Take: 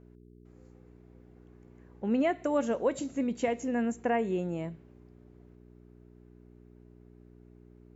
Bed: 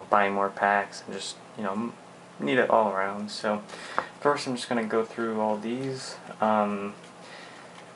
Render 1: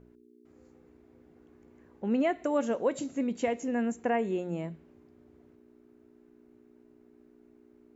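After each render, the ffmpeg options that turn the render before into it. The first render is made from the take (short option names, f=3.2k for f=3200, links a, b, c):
-af "bandreject=f=60:t=h:w=4,bandreject=f=120:t=h:w=4,bandreject=f=180:t=h:w=4"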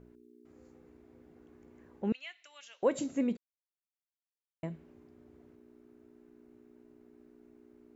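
-filter_complex "[0:a]asettb=1/sr,asplit=3[a][b][c];[a]atrim=end=2.124[d];[b]atrim=start=2.12:end=2.83,asetpts=PTS-STARTPTS,afade=t=in:d=0.004:c=qsin,afade=t=out:st=0.706:d=0.004:c=qsin,asuperpass=centerf=3800:order=4:qfactor=1.2[e];[c]atrim=start=2.826[f];[d][e]acrossfade=d=0.004:c1=hsin:c2=qsin[g];[g][f]acrossfade=d=0.004:c1=qsin:c2=hsin,asplit=3[h][i][j];[h]atrim=end=3.37,asetpts=PTS-STARTPTS,afade=t=out:st=3.366:d=0.004:c=hsin[k];[i]atrim=start=3.37:end=4.63,asetpts=PTS-STARTPTS,volume=0[l];[j]atrim=start=4.63,asetpts=PTS-STARTPTS,afade=t=in:d=0.004:c=hsin[m];[k][l][m]concat=n=3:v=0:a=1"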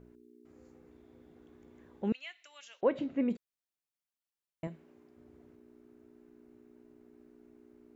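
-filter_complex "[0:a]asettb=1/sr,asplit=3[a][b][c];[a]atrim=end=0.914[d];[b]atrim=start=0.91:end=2.1,asetpts=PTS-STARTPTS,afade=t=in:d=0.004:c=qsin,afade=t=out:st=1.186:d=0.004:c=qsin,equalizer=f=3.5k:t=o:w=0.22:g=9.5[e];[c]atrim=start=2.096[f];[d][e]acrossfade=d=0.004:c1=hsin:c2=qsin[g];[g][f]acrossfade=d=0.004:c1=qsin:c2=hsin,asplit=3[h][i][j];[h]afade=t=out:st=2.8:d=0.02[k];[i]lowpass=f=3.2k:w=0.5412,lowpass=f=3.2k:w=1.3066,afade=t=in:st=2.8:d=0.02,afade=t=out:st=3.29:d=0.02[l];[j]afade=t=in:st=3.29:d=0.02[m];[k][l][m]amix=inputs=3:normalize=0,asettb=1/sr,asplit=3[n][o][p];[n]atrim=end=4.674[q];[o]atrim=start=4.67:end=5.17,asetpts=PTS-STARTPTS,afade=t=in:d=0.004:c=qsin,afade=t=out:st=0.496:d=0.004:c=qsin,highpass=f=270:p=1[r];[p]atrim=start=5.166[s];[q][r]acrossfade=d=0.004:c1=hsin:c2=qsin[t];[t][s]acrossfade=d=0.004:c1=qsin:c2=hsin"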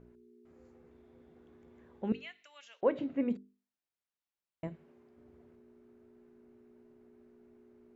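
-af "lowpass=f=3.3k:p=1,bandreject=f=50:t=h:w=6,bandreject=f=100:t=h:w=6,bandreject=f=150:t=h:w=6,bandreject=f=200:t=h:w=6,bandreject=f=250:t=h:w=6,bandreject=f=300:t=h:w=6,bandreject=f=350:t=h:w=6,bandreject=f=400:t=h:w=6,bandreject=f=450:t=h:w=6"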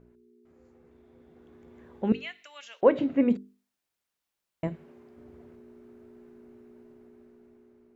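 -af "dynaudnorm=f=630:g=5:m=9dB"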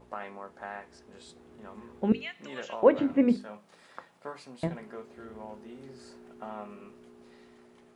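-filter_complex "[1:a]volume=-17.5dB[a];[0:a][a]amix=inputs=2:normalize=0"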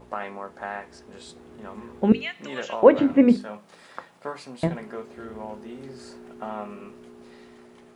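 -af "volume=7dB,alimiter=limit=-2dB:level=0:latency=1"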